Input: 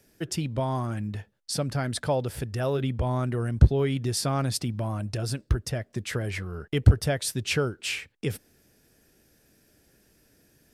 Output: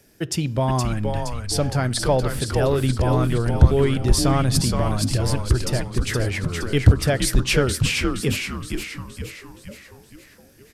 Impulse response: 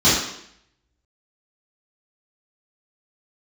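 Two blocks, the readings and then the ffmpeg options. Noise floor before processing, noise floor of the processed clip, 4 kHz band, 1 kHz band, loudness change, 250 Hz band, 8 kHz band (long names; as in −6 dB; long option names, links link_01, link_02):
−64 dBFS, −50 dBFS, +7.5 dB, +7.0 dB, +6.5 dB, +7.5 dB, +7.5 dB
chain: -filter_complex "[0:a]acontrast=79,asplit=7[link_01][link_02][link_03][link_04][link_05][link_06][link_07];[link_02]adelay=469,afreqshift=-110,volume=-4dB[link_08];[link_03]adelay=938,afreqshift=-220,volume=-10dB[link_09];[link_04]adelay=1407,afreqshift=-330,volume=-16dB[link_10];[link_05]adelay=1876,afreqshift=-440,volume=-22.1dB[link_11];[link_06]adelay=2345,afreqshift=-550,volume=-28.1dB[link_12];[link_07]adelay=2814,afreqshift=-660,volume=-34.1dB[link_13];[link_01][link_08][link_09][link_10][link_11][link_12][link_13]amix=inputs=7:normalize=0,asplit=2[link_14][link_15];[1:a]atrim=start_sample=2205[link_16];[link_15][link_16]afir=irnorm=-1:irlink=0,volume=-43.5dB[link_17];[link_14][link_17]amix=inputs=2:normalize=0,volume=-1dB"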